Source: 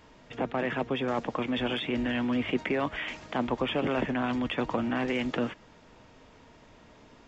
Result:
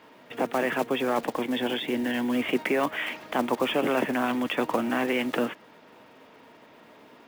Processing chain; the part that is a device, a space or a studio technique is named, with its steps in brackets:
0:01.33–0:02.34: thirty-one-band graphic EQ 630 Hz −4 dB, 1,250 Hz −10 dB, 2,500 Hz −6 dB
early digital voice recorder (band-pass filter 240–3,900 Hz; one scale factor per block 5 bits)
level +4.5 dB

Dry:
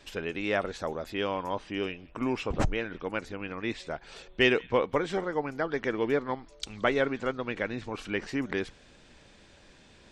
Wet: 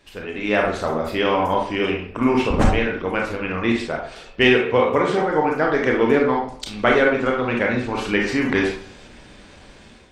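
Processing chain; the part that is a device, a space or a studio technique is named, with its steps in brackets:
0:04.59–0:05.22: high-pass filter 66 Hz 24 dB per octave
speakerphone in a meeting room (convolution reverb RT60 0.55 s, pre-delay 25 ms, DRR −1 dB; automatic gain control gain up to 10 dB; Opus 32 kbit/s 48,000 Hz)

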